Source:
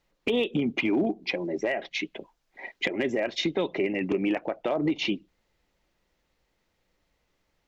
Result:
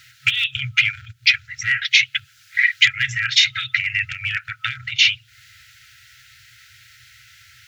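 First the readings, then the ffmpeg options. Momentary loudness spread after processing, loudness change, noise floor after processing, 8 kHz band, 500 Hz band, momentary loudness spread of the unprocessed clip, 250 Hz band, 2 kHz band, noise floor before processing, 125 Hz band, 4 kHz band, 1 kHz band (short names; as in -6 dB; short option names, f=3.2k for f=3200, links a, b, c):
10 LU, +10.0 dB, -53 dBFS, n/a, under -40 dB, 8 LU, under -20 dB, +16.0 dB, -75 dBFS, +5.0 dB, +17.0 dB, -1.0 dB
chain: -af "apsyclip=25dB,highpass=f=100:w=0.5412,highpass=f=100:w=1.3066,acompressor=threshold=-17dB:ratio=5,afftfilt=real='re*(1-between(b*sr/4096,130,1300))':imag='im*(1-between(b*sr/4096,130,1300))':win_size=4096:overlap=0.75,volume=5dB"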